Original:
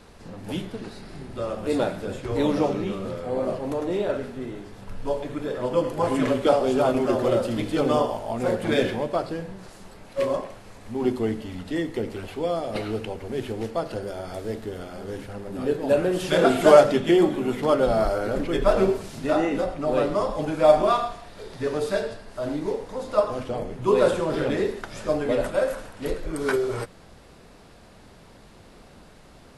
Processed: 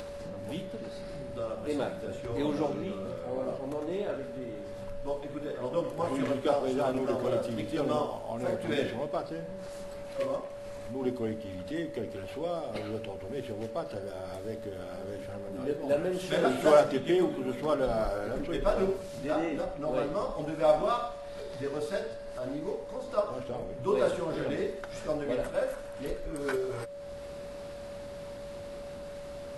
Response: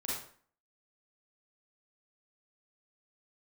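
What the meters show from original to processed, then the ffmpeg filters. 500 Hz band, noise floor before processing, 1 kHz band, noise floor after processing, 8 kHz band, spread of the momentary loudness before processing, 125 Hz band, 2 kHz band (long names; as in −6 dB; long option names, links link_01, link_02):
−7.5 dB, −50 dBFS, −8.0 dB, −42 dBFS, −7.5 dB, 14 LU, −7.5 dB, −8.0 dB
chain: -af "acompressor=mode=upward:threshold=-28dB:ratio=2.5,aeval=exprs='val(0)+0.0251*sin(2*PI*570*n/s)':channel_layout=same,volume=-8dB"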